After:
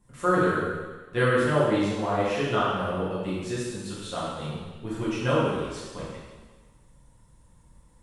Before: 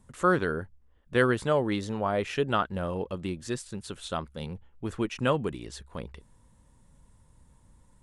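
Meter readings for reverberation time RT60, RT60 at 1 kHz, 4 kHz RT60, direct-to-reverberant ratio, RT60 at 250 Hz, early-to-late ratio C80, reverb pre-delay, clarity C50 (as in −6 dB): 1.4 s, 1.4 s, 1.4 s, −9.0 dB, 1.3 s, 1.0 dB, 5 ms, −1.5 dB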